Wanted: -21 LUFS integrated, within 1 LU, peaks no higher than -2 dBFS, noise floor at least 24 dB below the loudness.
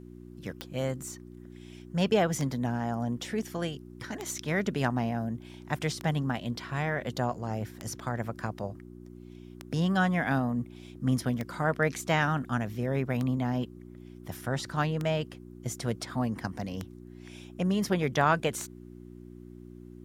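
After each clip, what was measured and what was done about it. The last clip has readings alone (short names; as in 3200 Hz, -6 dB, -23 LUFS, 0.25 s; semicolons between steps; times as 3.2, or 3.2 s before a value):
clicks 11; hum 60 Hz; harmonics up to 360 Hz; hum level -46 dBFS; loudness -31.0 LUFS; peak -10.0 dBFS; loudness target -21.0 LUFS
-> de-click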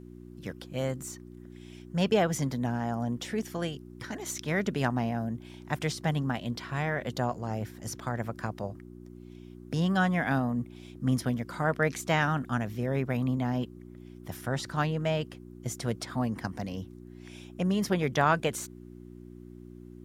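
clicks 0; hum 60 Hz; harmonics up to 360 Hz; hum level -46 dBFS
-> de-hum 60 Hz, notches 6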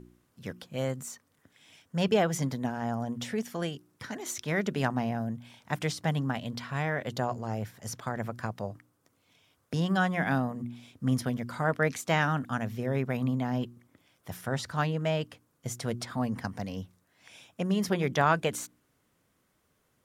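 hum none; loudness -31.5 LUFS; peak -10.0 dBFS; loudness target -21.0 LUFS
-> gain +10.5 dB; limiter -2 dBFS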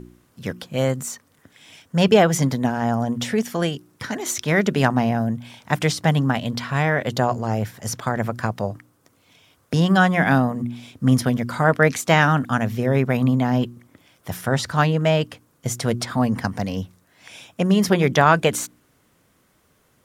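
loudness -21.0 LUFS; peak -2.0 dBFS; noise floor -62 dBFS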